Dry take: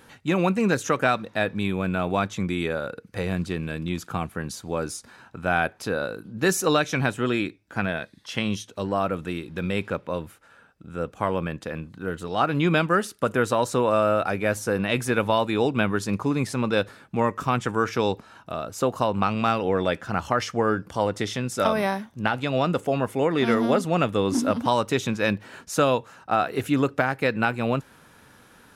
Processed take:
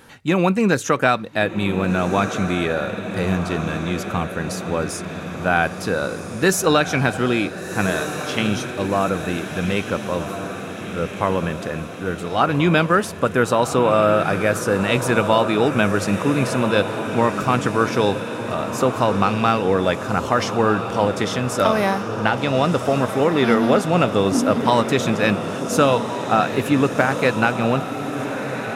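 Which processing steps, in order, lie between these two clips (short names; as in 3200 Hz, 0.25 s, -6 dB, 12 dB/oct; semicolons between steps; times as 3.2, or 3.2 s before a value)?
diffused feedback echo 1.43 s, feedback 59%, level -8.5 dB; gain +4.5 dB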